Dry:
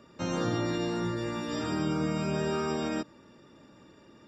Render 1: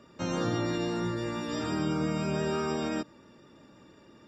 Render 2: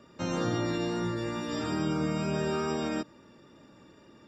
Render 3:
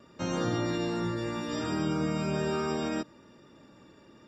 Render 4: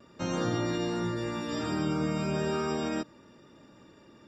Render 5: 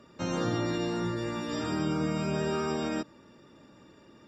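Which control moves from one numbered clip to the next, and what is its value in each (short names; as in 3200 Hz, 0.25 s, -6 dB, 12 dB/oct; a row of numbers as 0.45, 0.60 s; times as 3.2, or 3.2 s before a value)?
vibrato, rate: 5.9, 2.3, 0.71, 0.37, 15 Hz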